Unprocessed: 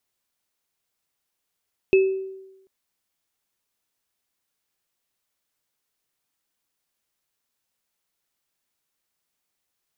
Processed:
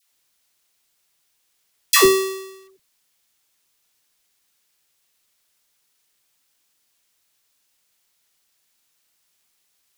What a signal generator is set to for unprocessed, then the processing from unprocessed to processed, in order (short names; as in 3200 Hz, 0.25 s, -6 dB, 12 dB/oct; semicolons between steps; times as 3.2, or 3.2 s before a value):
sine partials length 0.74 s, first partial 383 Hz, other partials 2600 Hz, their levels -10.5 dB, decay 0.97 s, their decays 0.39 s, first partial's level -11 dB
half-waves squared off; high shelf 2100 Hz +10.5 dB; dispersion lows, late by 0.127 s, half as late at 680 Hz